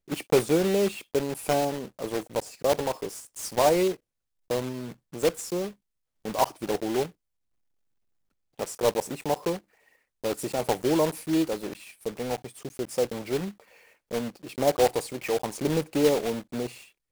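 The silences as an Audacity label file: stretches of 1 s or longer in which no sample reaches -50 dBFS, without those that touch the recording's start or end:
7.120000	8.590000	silence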